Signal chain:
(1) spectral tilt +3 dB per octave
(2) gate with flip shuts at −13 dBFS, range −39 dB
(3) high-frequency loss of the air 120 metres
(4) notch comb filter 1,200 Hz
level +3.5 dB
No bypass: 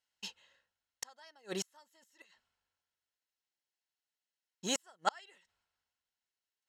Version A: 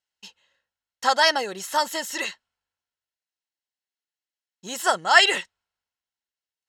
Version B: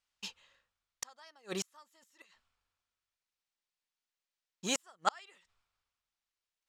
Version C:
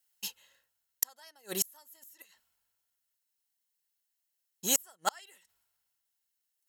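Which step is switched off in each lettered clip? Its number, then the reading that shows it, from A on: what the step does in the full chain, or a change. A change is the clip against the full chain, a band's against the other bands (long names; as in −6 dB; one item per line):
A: 2, change in momentary loudness spread +2 LU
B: 4, change in momentary loudness spread +6 LU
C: 3, 8 kHz band +10.0 dB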